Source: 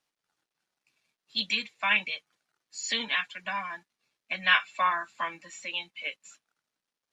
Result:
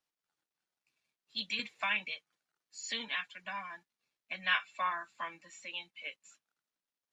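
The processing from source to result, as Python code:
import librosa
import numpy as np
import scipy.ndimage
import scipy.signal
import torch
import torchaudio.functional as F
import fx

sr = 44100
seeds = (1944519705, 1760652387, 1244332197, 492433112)

y = fx.band_squash(x, sr, depth_pct=70, at=(1.59, 2.14))
y = y * 10.0 ** (-8.0 / 20.0)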